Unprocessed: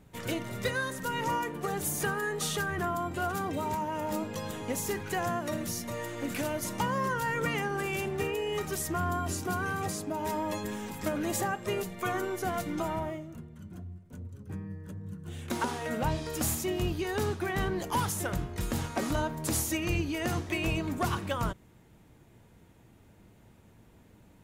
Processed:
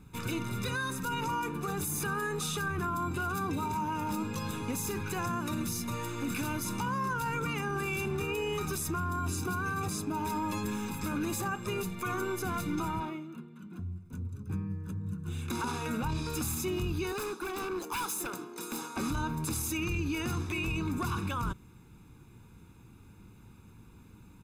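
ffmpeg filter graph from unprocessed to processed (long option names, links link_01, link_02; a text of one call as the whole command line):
ffmpeg -i in.wav -filter_complex "[0:a]asettb=1/sr,asplit=3[link_01][link_02][link_03];[link_01]atrim=end=13.004[link_04];[link_02]atrim=start=13:end=13.79,asetpts=PTS-STARTPTS,afade=type=in:duration=0.004:curve=qsin,afade=type=out:start_time=0.786:duration=0.004:curve=qsin,highpass=frequency=190:width=0.5412,highpass=frequency=190:width=1.3066,highshelf=frequency=4600:width_type=q:width=1.5:gain=-6,asoftclip=type=hard:threshold=-29dB[link_05];[link_03]atrim=start=13.786[link_06];[link_04][link_05]acrossfade=duration=0.004:curve1=hsin:curve2=qsin[link_07];[link_07][link_06]acrossfade=duration=0.004:curve1=qsin:curve2=hsin,asettb=1/sr,asplit=3[link_08][link_09][link_10];[link_08]atrim=end=17.124[link_11];[link_09]atrim=start=17.12:end=18.97,asetpts=PTS-STARTPTS,afade=type=in:duration=0.004:curve=qsin,afade=type=out:start_time=1.846:duration=0.004:curve=qsin,highpass=frequency=290:width=0.5412,highpass=frequency=290:width=1.3066,equalizer=frequency=2400:width_type=o:width=1.7:gain=-7,aeval=exprs='0.0282*(abs(mod(val(0)/0.0282+3,4)-2)-1)':channel_layout=same[link_12];[link_10]atrim=start=18.966[link_13];[link_11][link_12]acrossfade=duration=0.004:curve1=hsin:curve2=qsin[link_14];[link_14][link_13]acrossfade=duration=0.004:curve1=qsin:curve2=hsin,aecho=1:1:0.8:0.77,alimiter=level_in=1dB:limit=-24dB:level=0:latency=1:release=25,volume=-1dB" out.wav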